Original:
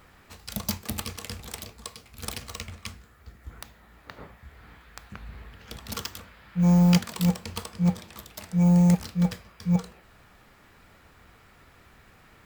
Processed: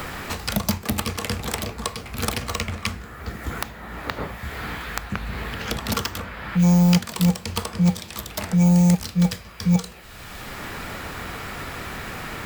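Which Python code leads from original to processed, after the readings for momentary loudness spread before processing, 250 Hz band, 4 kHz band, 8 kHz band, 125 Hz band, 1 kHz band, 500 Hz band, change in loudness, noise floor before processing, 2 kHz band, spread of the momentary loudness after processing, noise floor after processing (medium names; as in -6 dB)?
24 LU, +3.5 dB, +8.0 dB, +7.0 dB, +4.0 dB, +9.0 dB, +6.5 dB, +1.5 dB, -56 dBFS, +12.0 dB, 15 LU, -40 dBFS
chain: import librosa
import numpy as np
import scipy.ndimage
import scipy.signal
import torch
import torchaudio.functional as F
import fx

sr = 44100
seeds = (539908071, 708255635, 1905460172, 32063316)

y = fx.band_squash(x, sr, depth_pct=70)
y = y * 10.0 ** (8.0 / 20.0)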